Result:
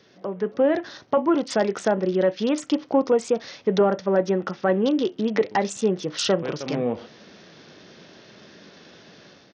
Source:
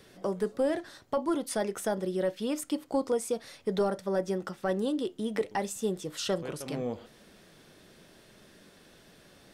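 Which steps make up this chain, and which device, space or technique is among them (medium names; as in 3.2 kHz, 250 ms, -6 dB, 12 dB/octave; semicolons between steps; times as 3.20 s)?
Bluetooth headset (high-pass 120 Hz 12 dB/octave; level rider gain up to 9 dB; resampled via 16 kHz; SBC 64 kbps 48 kHz)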